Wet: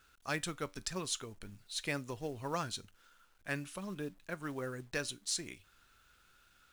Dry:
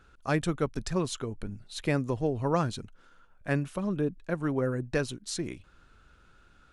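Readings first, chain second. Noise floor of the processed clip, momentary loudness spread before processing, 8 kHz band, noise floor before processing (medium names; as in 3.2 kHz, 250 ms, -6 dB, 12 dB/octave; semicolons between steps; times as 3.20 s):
-68 dBFS, 11 LU, +1.5 dB, -60 dBFS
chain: tilt shelf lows -7.5 dB, about 1.3 kHz; feedback comb 96 Hz, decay 0.22 s, harmonics all, mix 40%; companded quantiser 6-bit; trim -3 dB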